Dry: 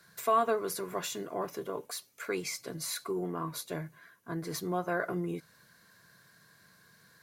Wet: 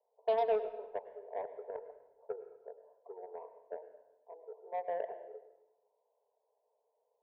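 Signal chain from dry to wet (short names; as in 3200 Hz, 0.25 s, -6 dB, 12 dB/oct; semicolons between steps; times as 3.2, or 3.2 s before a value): Chebyshev band-pass 420–940 Hz, order 5; added harmonics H 7 -25 dB, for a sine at -21 dBFS; reverb RT60 1.0 s, pre-delay 93 ms, DRR 11 dB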